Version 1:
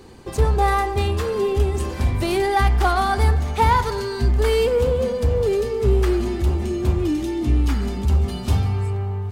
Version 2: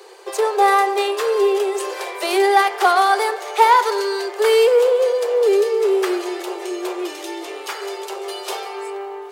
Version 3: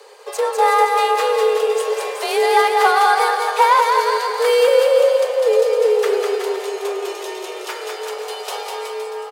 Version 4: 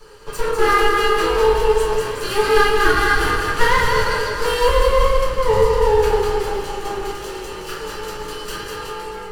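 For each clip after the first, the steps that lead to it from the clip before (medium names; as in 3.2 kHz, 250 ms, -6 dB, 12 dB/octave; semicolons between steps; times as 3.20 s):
steep high-pass 370 Hz 96 dB/octave; trim +5.5 dB
frequency shift +39 Hz; on a send: bouncing-ball echo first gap 200 ms, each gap 0.85×, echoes 5; on the sum: trim -1 dB
comb filter that takes the minimum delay 0.67 ms; reverberation RT60 0.45 s, pre-delay 6 ms, DRR -2.5 dB; trim -4.5 dB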